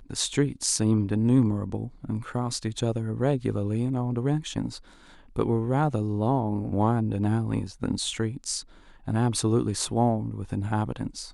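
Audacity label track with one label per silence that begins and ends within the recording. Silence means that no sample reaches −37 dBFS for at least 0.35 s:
4.780000	5.360000	silence
8.610000	9.080000	silence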